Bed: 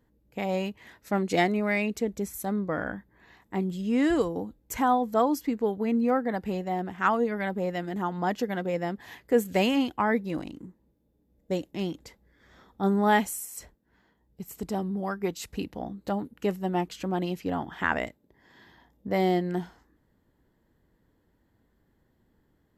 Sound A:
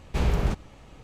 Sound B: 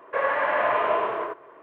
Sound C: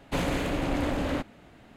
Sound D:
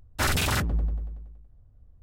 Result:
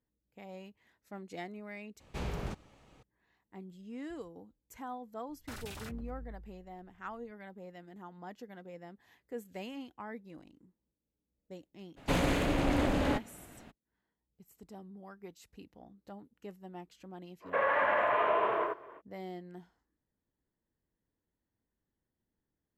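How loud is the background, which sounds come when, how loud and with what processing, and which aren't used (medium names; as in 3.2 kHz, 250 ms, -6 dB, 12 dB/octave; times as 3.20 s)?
bed -19 dB
2.00 s: replace with A -9.5 dB + bass shelf 79 Hz -9.5 dB
5.29 s: add D -14 dB + compression, threshold -28 dBFS
11.96 s: add C -1 dB, fades 0.02 s
17.40 s: add B -2.5 dB, fades 0.05 s + peak limiter -17 dBFS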